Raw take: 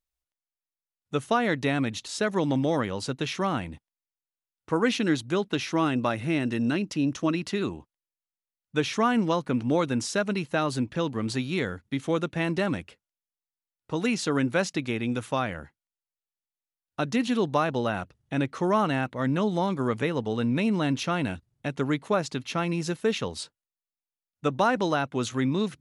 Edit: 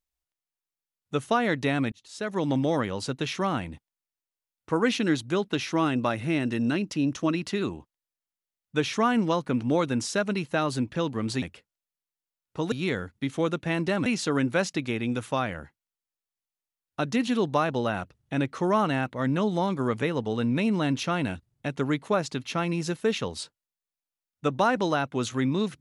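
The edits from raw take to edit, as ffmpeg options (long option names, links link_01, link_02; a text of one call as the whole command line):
ffmpeg -i in.wav -filter_complex "[0:a]asplit=5[link_01][link_02][link_03][link_04][link_05];[link_01]atrim=end=1.92,asetpts=PTS-STARTPTS,afade=type=out:start_time=1.916:duration=0.004:curve=hsin[link_06];[link_02]atrim=start=1.92:end=11.422,asetpts=PTS-STARTPTS,afade=type=in:duration=0.6[link_07];[link_03]atrim=start=12.758:end=14.062[link_08];[link_04]atrim=start=11.418:end=12.762[link_09];[link_05]atrim=start=14.058[link_10];[link_06][link_07]concat=n=2:v=0:a=1[link_11];[link_11][link_08]acrossfade=duration=0.004:curve1=hsin:curve2=hsin[link_12];[link_12][link_09]acrossfade=duration=0.004:curve1=hsin:curve2=hsin[link_13];[link_13][link_10]acrossfade=duration=0.004:curve1=hsin:curve2=hsin" out.wav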